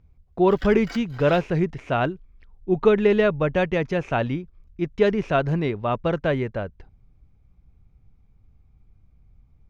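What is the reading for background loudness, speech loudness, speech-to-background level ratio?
−42.0 LKFS, −23.0 LKFS, 19.0 dB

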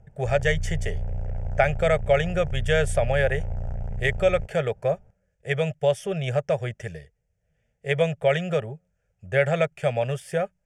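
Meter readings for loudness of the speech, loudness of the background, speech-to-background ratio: −25.0 LKFS, −33.5 LKFS, 8.5 dB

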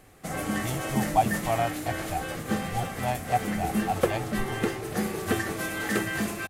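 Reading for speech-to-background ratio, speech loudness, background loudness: −1.5 dB, −32.0 LKFS, −30.5 LKFS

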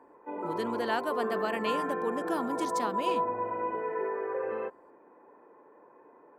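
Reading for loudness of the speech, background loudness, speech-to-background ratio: −34.5 LKFS, −33.5 LKFS, −1.0 dB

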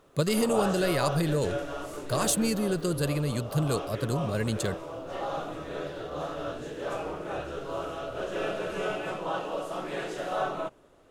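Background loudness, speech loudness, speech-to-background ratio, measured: −34.5 LKFS, −28.5 LKFS, 6.0 dB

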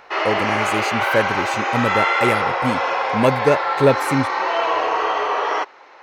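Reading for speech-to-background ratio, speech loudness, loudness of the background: −2.0 dB, −22.0 LKFS, −20.0 LKFS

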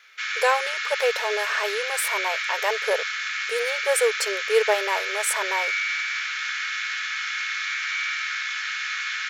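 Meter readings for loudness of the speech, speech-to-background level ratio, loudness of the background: −26.0 LKFS, 0.0 dB, −26.0 LKFS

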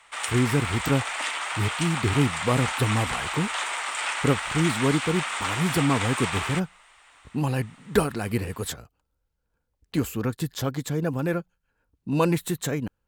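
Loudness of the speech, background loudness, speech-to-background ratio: −27.0 LKFS, −28.5 LKFS, 1.5 dB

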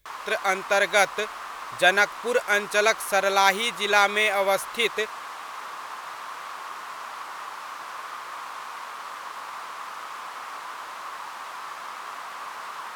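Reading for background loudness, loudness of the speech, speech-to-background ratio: −36.0 LKFS, −22.5 LKFS, 13.5 dB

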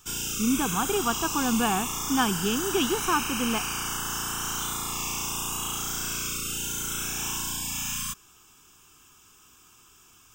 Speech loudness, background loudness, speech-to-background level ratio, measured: −27.5 LKFS, −29.0 LKFS, 1.5 dB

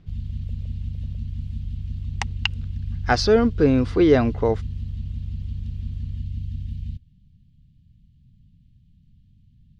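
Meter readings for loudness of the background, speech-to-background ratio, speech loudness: −32.0 LKFS, 11.5 dB, −20.5 LKFS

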